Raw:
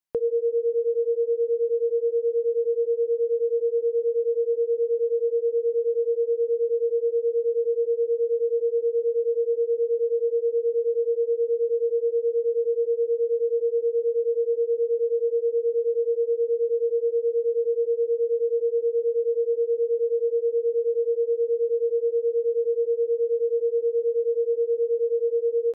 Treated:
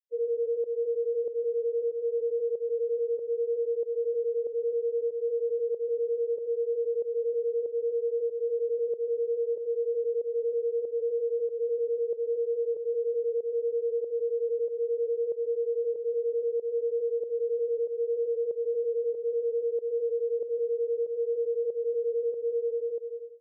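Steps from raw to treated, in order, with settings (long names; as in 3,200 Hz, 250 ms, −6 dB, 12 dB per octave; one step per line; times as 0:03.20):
fade-out on the ending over 0.89 s
high-pass filter 510 Hz 12 dB per octave
in parallel at +0.5 dB: brickwall limiter −28 dBFS, peak gain reduction 6.5 dB
on the sum: tempo change 1.1×
spectral peaks only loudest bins 1
fake sidechain pumping 94 BPM, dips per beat 1, −12 dB, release 181 ms
on a send at −17 dB: convolution reverb RT60 1.8 s, pre-delay 118 ms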